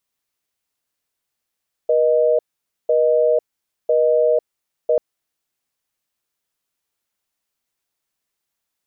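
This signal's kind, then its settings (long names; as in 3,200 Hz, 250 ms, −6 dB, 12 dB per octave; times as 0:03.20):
call progress tone busy tone, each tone −15.5 dBFS 3.09 s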